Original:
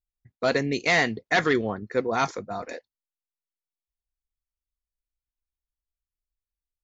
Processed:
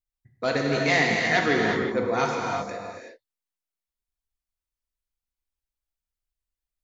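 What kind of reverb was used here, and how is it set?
reverb whose tail is shaped and stops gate 400 ms flat, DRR −1.5 dB
level −2.5 dB

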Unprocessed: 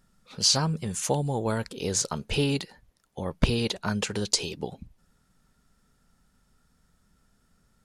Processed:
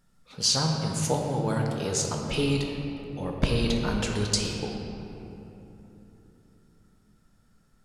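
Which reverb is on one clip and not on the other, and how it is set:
rectangular room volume 170 cubic metres, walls hard, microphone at 0.42 metres
level −2.5 dB

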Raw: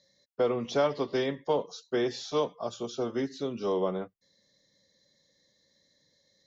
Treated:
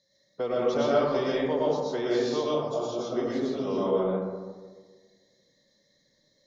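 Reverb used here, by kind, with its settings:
comb and all-pass reverb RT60 1.5 s, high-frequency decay 0.3×, pre-delay 75 ms, DRR −6.5 dB
level −4.5 dB

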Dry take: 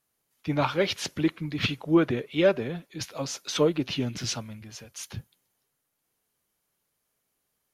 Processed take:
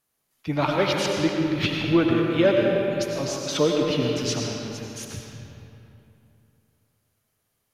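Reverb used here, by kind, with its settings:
comb and all-pass reverb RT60 2.9 s, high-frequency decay 0.65×, pre-delay 55 ms, DRR −0.5 dB
level +1 dB

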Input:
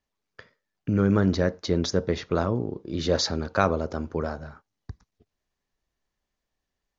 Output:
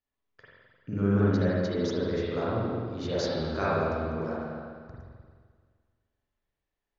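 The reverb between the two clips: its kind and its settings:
spring reverb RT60 1.8 s, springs 43/50 ms, chirp 35 ms, DRR −8.5 dB
level −12 dB

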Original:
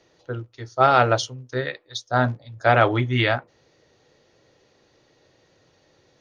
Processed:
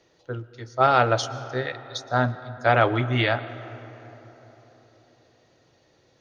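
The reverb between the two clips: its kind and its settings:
comb and all-pass reverb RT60 4.2 s, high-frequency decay 0.4×, pre-delay 85 ms, DRR 14.5 dB
level −2 dB

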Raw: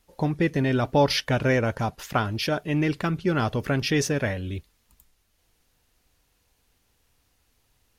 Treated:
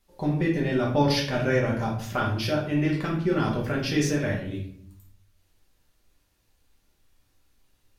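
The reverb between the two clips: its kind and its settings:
rectangular room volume 89 cubic metres, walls mixed, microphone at 1.2 metres
level −7 dB

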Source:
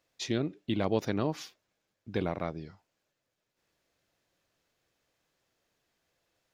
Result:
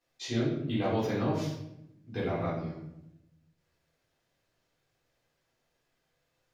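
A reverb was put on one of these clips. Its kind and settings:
rectangular room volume 240 cubic metres, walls mixed, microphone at 3.8 metres
level −11 dB

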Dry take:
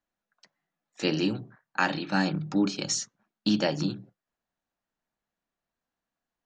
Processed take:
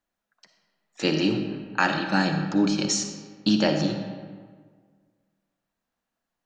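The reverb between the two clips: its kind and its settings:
comb and all-pass reverb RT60 1.7 s, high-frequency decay 0.6×, pre-delay 15 ms, DRR 5.5 dB
level +3 dB

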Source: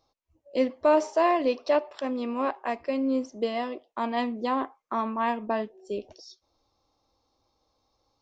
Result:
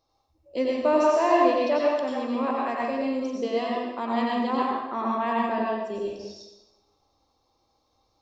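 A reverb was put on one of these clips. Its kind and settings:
dense smooth reverb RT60 1 s, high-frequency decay 0.9×, pre-delay 80 ms, DRR −4 dB
level −2.5 dB

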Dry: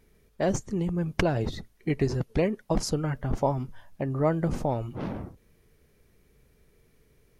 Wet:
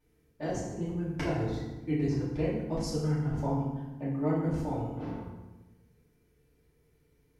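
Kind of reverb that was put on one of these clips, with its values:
feedback delay network reverb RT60 1.1 s, low-frequency decay 1.45×, high-frequency decay 0.7×, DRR −9 dB
level −16 dB

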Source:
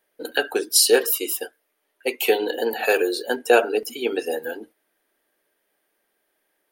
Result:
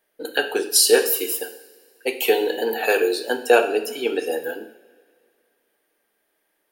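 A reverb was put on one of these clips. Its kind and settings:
coupled-rooms reverb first 0.66 s, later 2.4 s, from −19 dB, DRR 7 dB

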